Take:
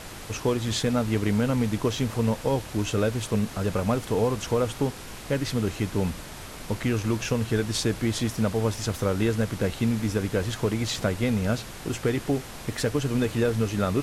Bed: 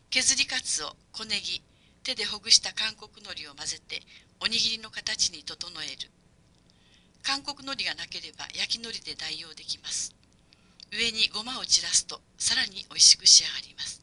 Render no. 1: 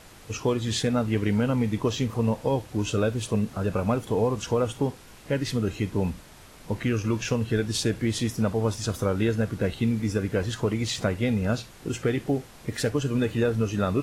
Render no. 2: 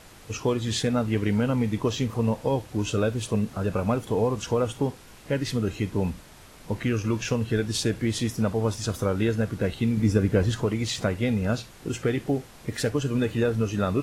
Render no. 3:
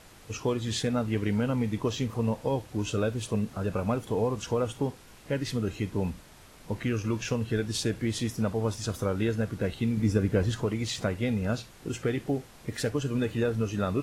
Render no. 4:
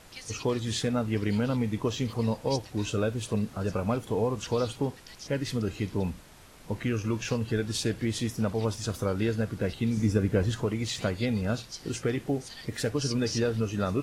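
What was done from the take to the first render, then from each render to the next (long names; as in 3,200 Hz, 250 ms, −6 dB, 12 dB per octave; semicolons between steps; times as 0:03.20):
noise reduction from a noise print 9 dB
0:09.97–0:10.63: low-shelf EQ 470 Hz +6.5 dB
level −3.5 dB
mix in bed −20 dB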